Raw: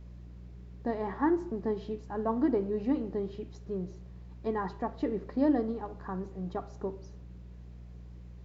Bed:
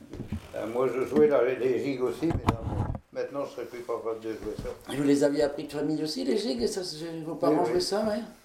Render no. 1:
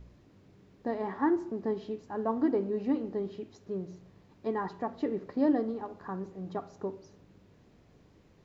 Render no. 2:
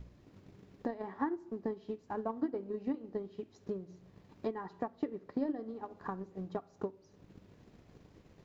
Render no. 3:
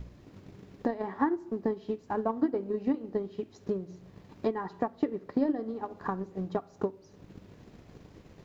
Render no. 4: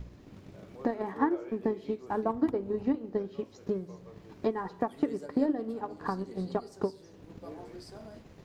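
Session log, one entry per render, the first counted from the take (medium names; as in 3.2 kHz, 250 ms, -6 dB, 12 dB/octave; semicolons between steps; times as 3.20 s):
de-hum 60 Hz, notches 4
transient shaper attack +10 dB, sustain -4 dB; compression 2:1, threshold -42 dBFS, peak gain reduction 14.5 dB
trim +7 dB
add bed -21 dB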